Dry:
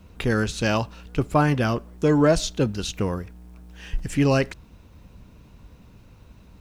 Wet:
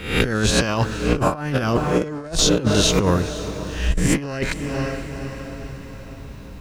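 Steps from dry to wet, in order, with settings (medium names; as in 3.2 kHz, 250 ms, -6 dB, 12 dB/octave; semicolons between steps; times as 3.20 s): reverse spectral sustain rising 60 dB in 0.55 s; echo that smears into a reverb 501 ms, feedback 49%, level -15.5 dB; compressor with a negative ratio -24 dBFS, ratio -0.5; trim +5.5 dB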